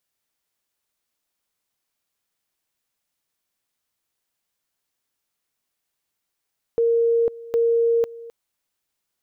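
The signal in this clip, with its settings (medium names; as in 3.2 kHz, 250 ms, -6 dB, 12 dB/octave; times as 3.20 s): two-level tone 464 Hz -15.5 dBFS, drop 19.5 dB, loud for 0.50 s, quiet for 0.26 s, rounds 2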